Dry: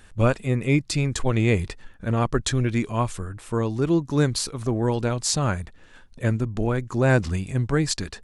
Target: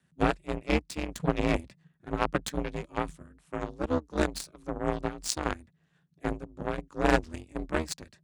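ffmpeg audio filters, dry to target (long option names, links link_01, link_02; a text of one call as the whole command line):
ffmpeg -i in.wav -af "aeval=exprs='val(0)*sin(2*PI*120*n/s)':channel_layout=same,afreqshift=40,aeval=exprs='0.501*(cos(1*acos(clip(val(0)/0.501,-1,1)))-cos(1*PI/2))+0.0631*(cos(7*acos(clip(val(0)/0.501,-1,1)))-cos(7*PI/2))':channel_layout=same" out.wav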